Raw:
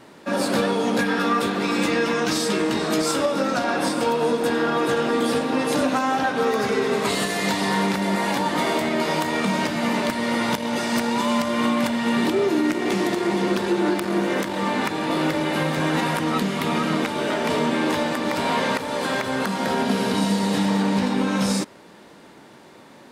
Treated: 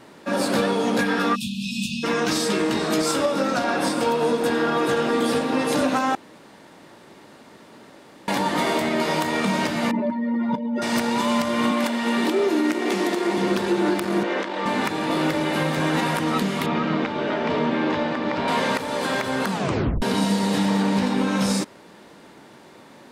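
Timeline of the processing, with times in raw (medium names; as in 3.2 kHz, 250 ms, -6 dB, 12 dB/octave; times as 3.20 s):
1.35–2.04 s: spectral selection erased 260–2400 Hz
6.15–8.28 s: room tone
9.91–10.82 s: spectral contrast enhancement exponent 2.3
11.71–13.38 s: high-pass 210 Hz 24 dB/octave
14.23–14.66 s: band-pass 320–4200 Hz
16.66–18.48 s: distance through air 190 m
19.51 s: tape stop 0.51 s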